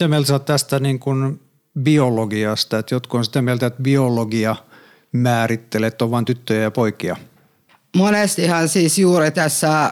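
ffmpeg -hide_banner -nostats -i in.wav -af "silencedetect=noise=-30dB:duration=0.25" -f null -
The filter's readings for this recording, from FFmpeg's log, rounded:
silence_start: 1.36
silence_end: 1.76 | silence_duration: 0.40
silence_start: 4.58
silence_end: 5.14 | silence_duration: 0.56
silence_start: 7.18
silence_end: 7.94 | silence_duration: 0.76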